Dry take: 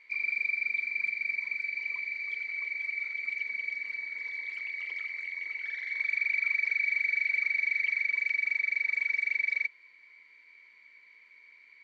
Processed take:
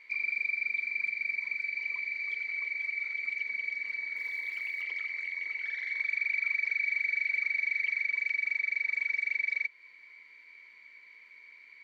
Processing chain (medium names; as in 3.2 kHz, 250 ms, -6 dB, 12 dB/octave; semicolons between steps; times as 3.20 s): in parallel at +1.5 dB: compression 8:1, threshold -37 dBFS, peak gain reduction 13 dB; 4.16–4.82 s: on the sum: short-mantissa float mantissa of 4-bit; trim -4 dB